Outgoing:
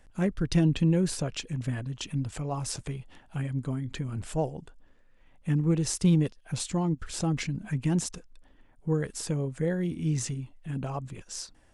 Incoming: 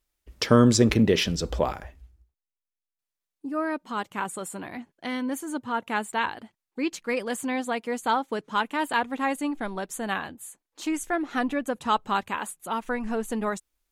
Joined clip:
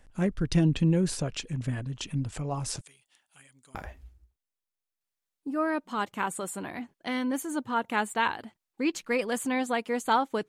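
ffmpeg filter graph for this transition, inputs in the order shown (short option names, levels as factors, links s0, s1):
-filter_complex "[0:a]asettb=1/sr,asplit=3[s0][s1][s2];[s0]atrim=end=2.814[s3];[s1]atrim=start=2.81:end=3.75,asetpts=PTS-STARTPTS,afade=t=in:d=0.004:c=qsin,afade=t=out:st=0.936:d=0.004:c=qsin,aderivative[s4];[s2]atrim=start=3.746[s5];[s3][s4]acrossfade=d=0.004:c1=hsin:c2=qsin[s6];[s6][s5]acrossfade=d=0.004:c1=qsin:c2=hsin,apad=whole_dur=10.48,atrim=end=10.48,atrim=end=3.752[s7];[1:a]atrim=start=1.728:end=8.46[s8];[s7][s8]acrossfade=d=0.004:c1=hsin:c2=hsin"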